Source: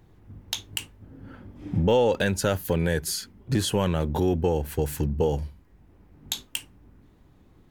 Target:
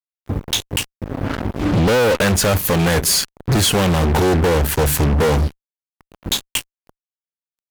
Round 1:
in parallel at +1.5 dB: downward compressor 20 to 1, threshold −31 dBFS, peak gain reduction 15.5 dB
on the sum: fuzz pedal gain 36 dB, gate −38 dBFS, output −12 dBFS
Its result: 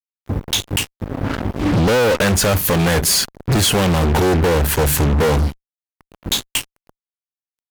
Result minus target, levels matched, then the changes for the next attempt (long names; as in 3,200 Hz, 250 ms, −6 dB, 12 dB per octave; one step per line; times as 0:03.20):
downward compressor: peak gain reduction −8 dB
change: downward compressor 20 to 1, threshold −39.5 dBFS, peak gain reduction 23.5 dB